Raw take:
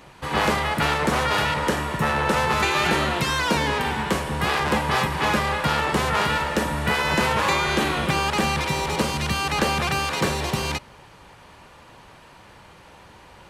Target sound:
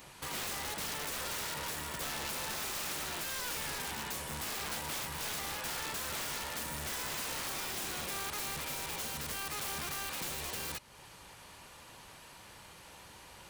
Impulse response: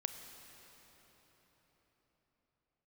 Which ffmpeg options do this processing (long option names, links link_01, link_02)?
-af "crystalizer=i=3.5:c=0,acompressor=threshold=-33dB:ratio=2,aeval=exprs='(mod(15.8*val(0)+1,2)-1)/15.8':channel_layout=same,volume=-8.5dB"